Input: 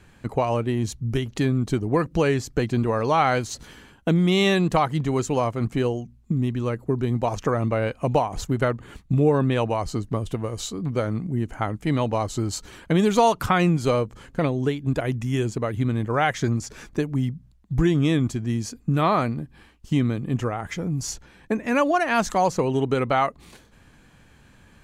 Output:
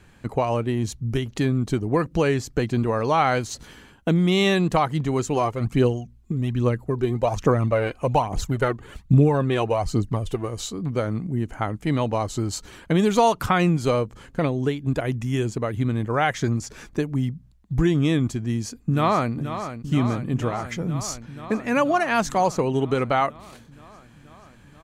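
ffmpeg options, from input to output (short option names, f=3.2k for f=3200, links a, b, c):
-filter_complex "[0:a]asplit=3[a][b][c];[a]afade=t=out:st=5.35:d=0.02[d];[b]aphaser=in_gain=1:out_gain=1:delay=3:decay=0.5:speed=1.2:type=triangular,afade=t=in:st=5.35:d=0.02,afade=t=out:st=10.47:d=0.02[e];[c]afade=t=in:st=10.47:d=0.02[f];[d][e][f]amix=inputs=3:normalize=0,asplit=2[g][h];[h]afade=t=in:st=18.41:d=0.01,afade=t=out:st=19.34:d=0.01,aecho=0:1:480|960|1440|1920|2400|2880|3360|3840|4320|4800|5280|5760:0.316228|0.252982|0.202386|0.161909|0.129527|0.103622|0.0828972|0.0663178|0.0530542|0.0424434|0.0339547|0.0271638[i];[g][i]amix=inputs=2:normalize=0"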